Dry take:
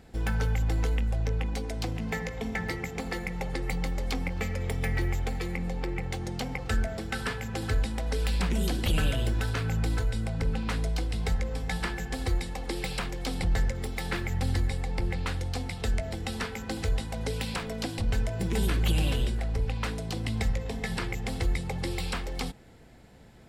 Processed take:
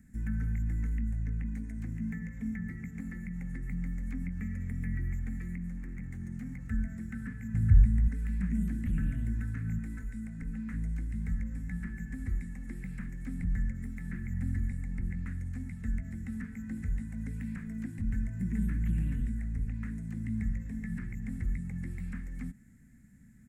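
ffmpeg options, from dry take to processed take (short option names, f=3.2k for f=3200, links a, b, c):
-filter_complex "[0:a]asettb=1/sr,asplit=3[a][b][c];[a]atrim=end=5.574[d];[b]atrim=start=5.57:end=6.69,asetpts=PTS-STARTPTS,afade=t=in:d=0.004:c=qsin,afade=t=out:st=1.116:d=0.004:c=qsin,volume=30.5dB,asoftclip=hard,volume=-30.5dB[e];[c]atrim=start=6.686[f];[d][e]acrossfade=d=0.004:c1=hsin:c2=qsin[g];[g][f]acrossfade=d=0.004:c1=qsin:c2=hsin,asettb=1/sr,asplit=3[h][i][j];[h]atrim=end=7.544[k];[i]atrim=start=7.54:end=8.08,asetpts=PTS-STARTPTS,afade=t=in:d=0.004:c=qsin,afade=t=out:st=0.536:d=0.004:c=qsin,lowshelf=f=190:t=q:w=1.5:g=11.5[l];[j]atrim=start=8.076[m];[k][l]acrossfade=d=0.004:c1=hsin:c2=qsin[n];[n][m]acrossfade=d=0.004:c1=qsin:c2=hsin,asettb=1/sr,asplit=3[o][p][q];[o]atrim=end=9.784[r];[p]atrim=start=9.78:end=10.73,asetpts=PTS-STARTPTS,afade=t=in:d=0.004:c=qsin,afade=t=out:st=0.946:d=0.004:c=qsin,equalizer=f=88:w=0.91:g=-13[s];[q]atrim=start=10.726[t];[r][s]acrossfade=d=0.004:c1=hsin:c2=qsin[u];[u][t]acrossfade=d=0.004:c1=qsin:c2=hsin,acrossover=split=2800[v][w];[w]acompressor=threshold=-55dB:ratio=4:attack=1:release=60[x];[v][x]amix=inputs=2:normalize=0,firequalizer=gain_entry='entry(110,0);entry(230,7);entry(370,-19);entry(530,-23);entry(840,-24);entry(1800,0);entry(3000,-22);entry(4700,-18);entry(6700,1)':delay=0.05:min_phase=1,acrossover=split=500[y][z];[z]acompressor=threshold=-42dB:ratio=6[aa];[y][aa]amix=inputs=2:normalize=0,volume=-5dB"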